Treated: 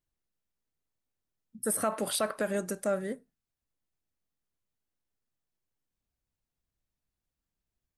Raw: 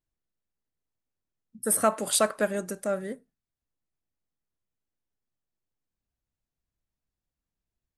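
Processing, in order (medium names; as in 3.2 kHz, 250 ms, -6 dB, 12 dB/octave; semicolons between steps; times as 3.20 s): 1.75–2.36 s: peaking EQ 7.2 kHz -5 dB -> -15 dB 0.39 oct; peak limiter -20 dBFS, peak gain reduction 8.5 dB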